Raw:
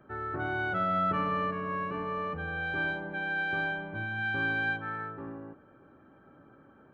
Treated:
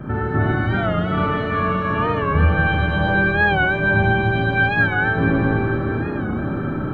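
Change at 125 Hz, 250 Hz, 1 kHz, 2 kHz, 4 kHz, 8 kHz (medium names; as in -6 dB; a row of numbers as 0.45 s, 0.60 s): +21.5 dB, +17.5 dB, +10.5 dB, +12.5 dB, +12.5 dB, no reading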